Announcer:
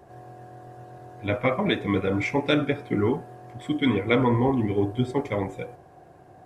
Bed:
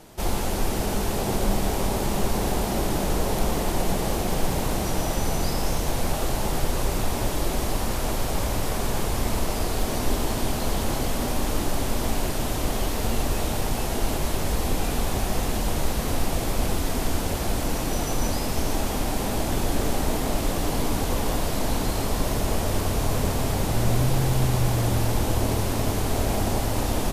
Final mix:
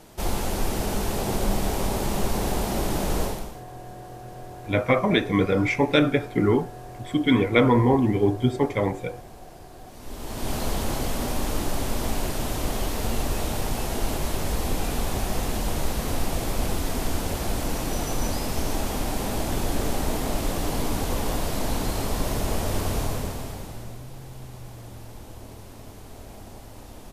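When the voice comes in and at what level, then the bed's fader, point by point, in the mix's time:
3.45 s, +3.0 dB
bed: 0:03.24 −1 dB
0:03.64 −22 dB
0:09.83 −22 dB
0:10.53 −1.5 dB
0:22.98 −1.5 dB
0:24.02 −18.5 dB

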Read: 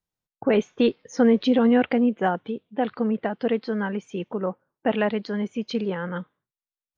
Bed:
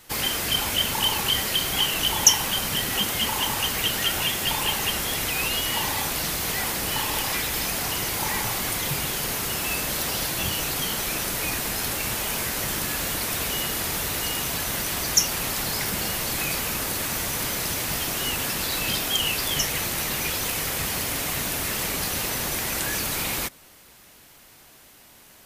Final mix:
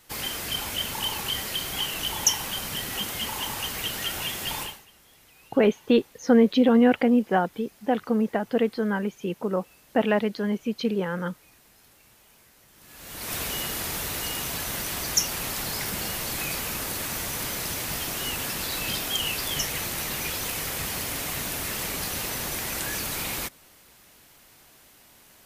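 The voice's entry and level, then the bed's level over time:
5.10 s, +0.5 dB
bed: 0:04.62 −6 dB
0:04.86 −29.5 dB
0:12.72 −29.5 dB
0:13.33 −3.5 dB

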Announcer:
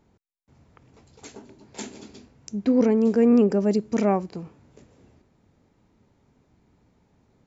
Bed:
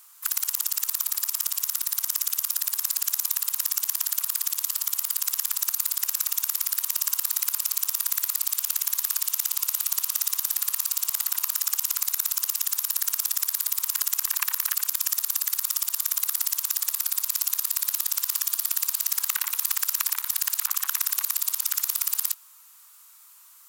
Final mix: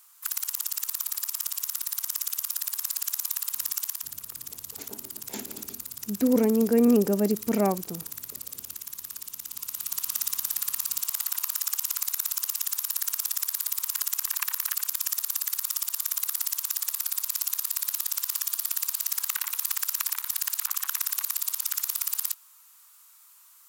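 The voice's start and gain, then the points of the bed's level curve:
3.55 s, −2.5 dB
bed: 0:03.84 −4 dB
0:04.14 −12.5 dB
0:09.42 −12.5 dB
0:10.10 −3 dB

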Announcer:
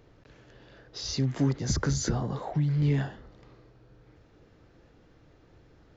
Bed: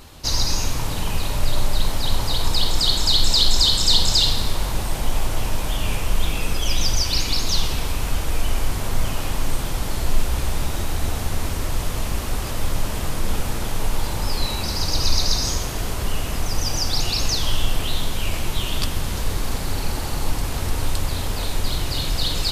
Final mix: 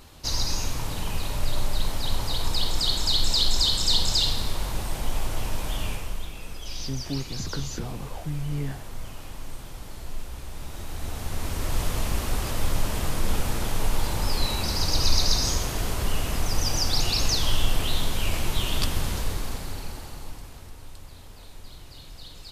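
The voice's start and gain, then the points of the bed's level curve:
5.70 s, −5.5 dB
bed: 0:05.82 −5.5 dB
0:06.31 −15 dB
0:10.48 −15 dB
0:11.79 −2 dB
0:19.05 −2 dB
0:20.78 −21 dB

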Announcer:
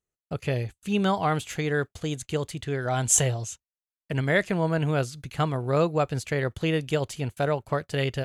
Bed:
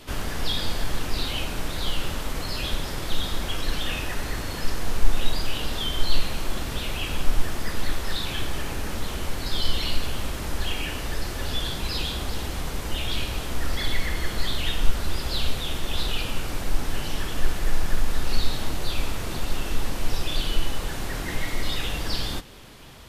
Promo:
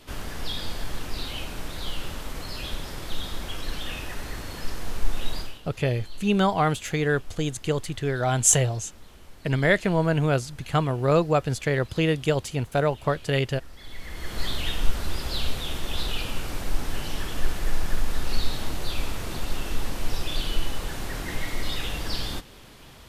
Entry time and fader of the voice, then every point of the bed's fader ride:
5.35 s, +2.5 dB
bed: 0:05.40 −5 dB
0:05.62 −19.5 dB
0:13.76 −19.5 dB
0:14.43 −2 dB

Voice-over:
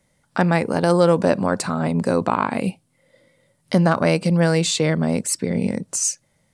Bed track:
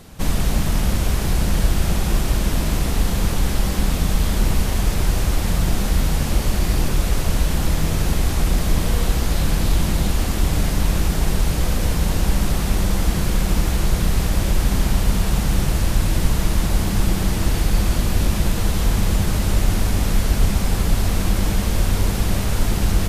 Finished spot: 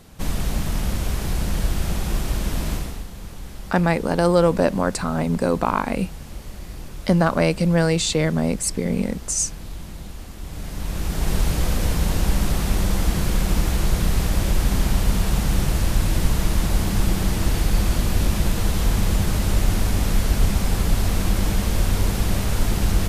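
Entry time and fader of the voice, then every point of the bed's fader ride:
3.35 s, −1.0 dB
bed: 0:02.73 −4.5 dB
0:03.08 −16.5 dB
0:10.38 −16.5 dB
0:11.35 −1.5 dB

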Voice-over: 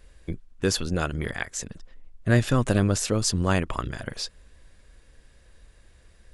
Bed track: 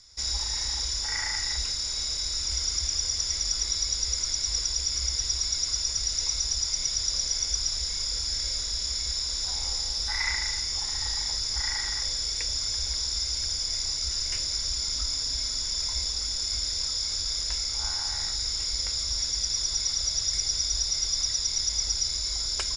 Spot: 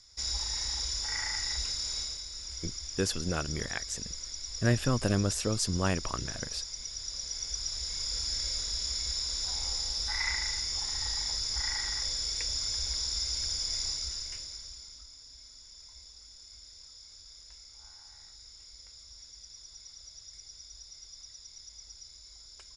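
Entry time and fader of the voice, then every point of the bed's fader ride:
2.35 s, −6.0 dB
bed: 0:01.98 −4 dB
0:02.26 −12 dB
0:06.91 −12 dB
0:08.20 −3.5 dB
0:13.87 −3.5 dB
0:15.09 −22 dB

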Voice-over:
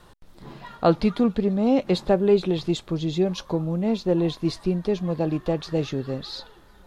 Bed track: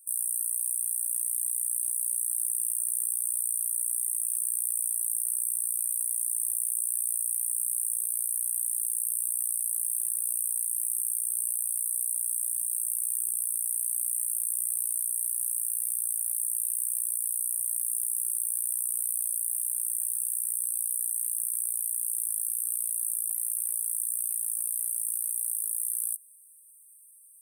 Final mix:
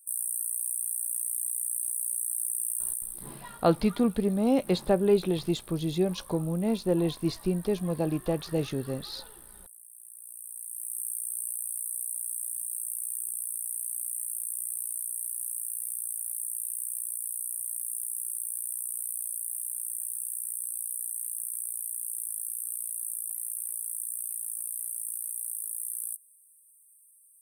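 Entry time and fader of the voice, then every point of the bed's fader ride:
2.80 s, −4.0 dB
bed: 0:02.90 −2 dB
0:03.43 −21.5 dB
0:09.90 −21.5 dB
0:11.03 −4.5 dB

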